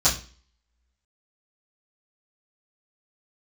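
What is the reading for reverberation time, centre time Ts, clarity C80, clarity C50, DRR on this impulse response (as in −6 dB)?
0.40 s, 23 ms, 15.5 dB, 10.0 dB, −13.5 dB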